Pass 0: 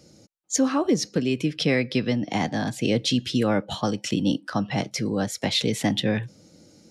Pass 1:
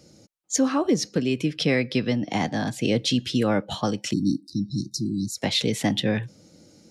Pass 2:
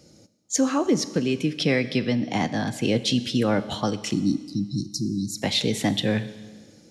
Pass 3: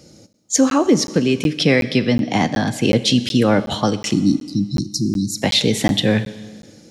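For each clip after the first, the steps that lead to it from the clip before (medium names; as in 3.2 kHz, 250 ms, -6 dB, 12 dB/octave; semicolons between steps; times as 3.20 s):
spectral selection erased 4.13–5.37 s, 370–3700 Hz
Schroeder reverb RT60 1.5 s, combs from 29 ms, DRR 13.5 dB
crackling interface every 0.37 s, samples 512, zero, from 0.33 s; trim +7 dB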